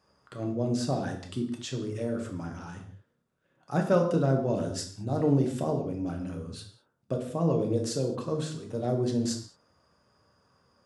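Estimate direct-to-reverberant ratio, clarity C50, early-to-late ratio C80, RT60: 2.0 dB, 8.0 dB, 11.0 dB, not exponential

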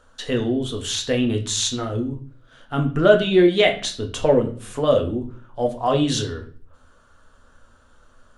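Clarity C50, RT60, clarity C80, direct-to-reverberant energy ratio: 12.0 dB, 0.45 s, 16.5 dB, 3.0 dB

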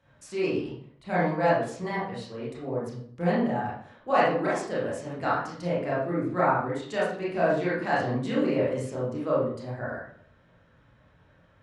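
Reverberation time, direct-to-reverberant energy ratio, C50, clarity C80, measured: 0.60 s, -9.0 dB, 1.0 dB, 5.5 dB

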